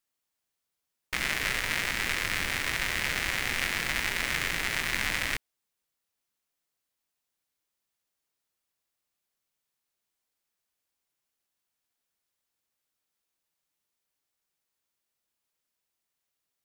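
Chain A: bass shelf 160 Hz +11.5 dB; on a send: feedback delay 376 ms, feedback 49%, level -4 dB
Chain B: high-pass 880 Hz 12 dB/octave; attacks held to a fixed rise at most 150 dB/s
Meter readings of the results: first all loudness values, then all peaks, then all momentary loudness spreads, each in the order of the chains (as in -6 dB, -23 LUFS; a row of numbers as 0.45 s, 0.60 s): -26.5 LUFS, -29.0 LUFS; -7.0 dBFS, -10.5 dBFS; 12 LU, 2 LU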